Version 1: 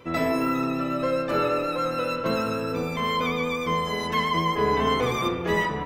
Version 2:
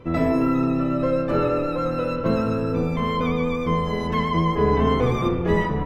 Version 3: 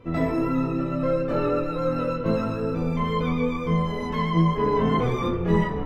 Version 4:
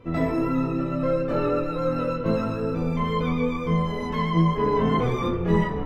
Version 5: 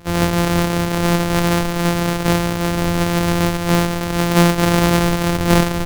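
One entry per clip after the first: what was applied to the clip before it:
tilt EQ -3 dB/octave
chorus voices 6, 0.42 Hz, delay 21 ms, depth 4 ms
no audible change
sorted samples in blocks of 256 samples; trim +7 dB

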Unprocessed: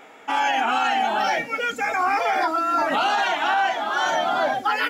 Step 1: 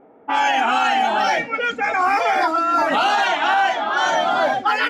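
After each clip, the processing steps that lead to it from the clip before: level-controlled noise filter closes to 460 Hz, open at -17 dBFS; trim +3.5 dB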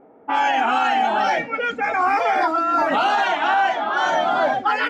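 treble shelf 3 kHz -8 dB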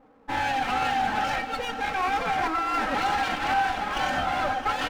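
comb filter that takes the minimum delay 3.8 ms; delay 668 ms -14 dB; reverberation, pre-delay 134 ms, DRR 11 dB; trim -6 dB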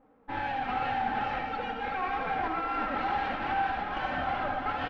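chunks repeated in reverse 347 ms, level -5.5 dB; distance through air 320 m; delay 76 ms -7.5 dB; trim -5 dB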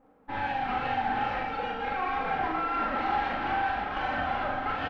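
doubling 41 ms -3.5 dB

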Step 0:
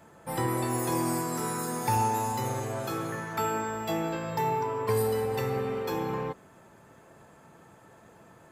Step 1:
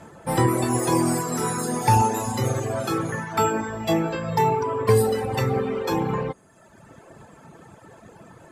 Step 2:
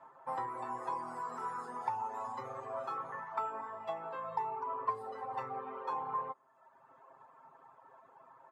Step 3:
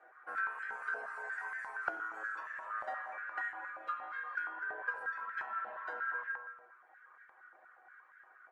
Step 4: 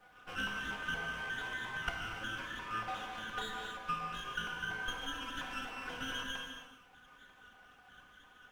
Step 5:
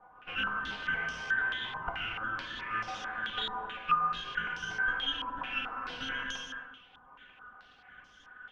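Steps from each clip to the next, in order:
Chebyshev low-pass 9.8 kHz, order 2; bass shelf 490 Hz +4 dB; reverb removal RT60 1.1 s; trim +9 dB
compression 4:1, threshold -22 dBFS, peak gain reduction 8.5 dB; band-pass filter 1 kHz, Q 4.5; comb 7.5 ms; trim -2.5 dB
ring modulator 560 Hz; reverberation RT60 1.4 s, pre-delay 43 ms, DRR 5 dB; step-sequenced high-pass 8.5 Hz 690–1700 Hz; trim -4 dB
comb filter that takes the minimum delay 4 ms; gated-style reverb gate 310 ms flat, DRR 2 dB; added noise pink -77 dBFS
step-sequenced low-pass 4.6 Hz 990–5500 Hz

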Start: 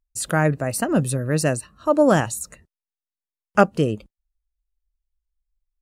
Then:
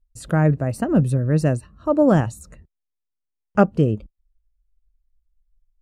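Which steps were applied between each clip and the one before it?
tilt EQ -3 dB/octave; trim -3.5 dB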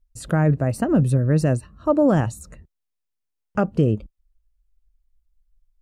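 peak limiter -10 dBFS, peak gain reduction 8.5 dB; trim +1.5 dB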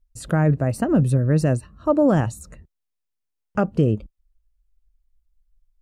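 no audible change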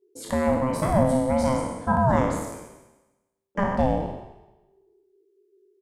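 spectral sustain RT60 1.06 s; ring modulator 390 Hz; echo from a far wall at 23 m, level -12 dB; trim -2.5 dB

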